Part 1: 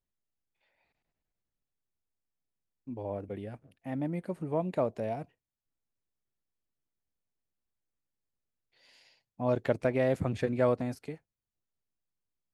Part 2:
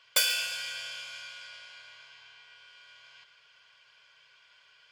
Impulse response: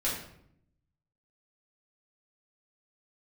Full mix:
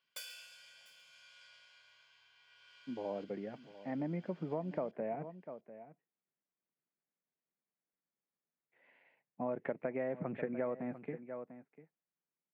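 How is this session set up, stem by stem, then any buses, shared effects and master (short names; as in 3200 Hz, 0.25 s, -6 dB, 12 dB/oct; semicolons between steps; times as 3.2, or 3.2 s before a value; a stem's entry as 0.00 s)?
-1.0 dB, 0.00 s, no send, echo send -17 dB, elliptic band-pass 160–2200 Hz
0.95 s -22 dB -> 1.42 s -14 dB -> 2.31 s -14 dB -> 2.72 s -7 dB, 0.00 s, no send, echo send -21 dB, dry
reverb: off
echo: echo 0.696 s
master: compressor 5:1, threshold -34 dBFS, peak gain reduction 10.5 dB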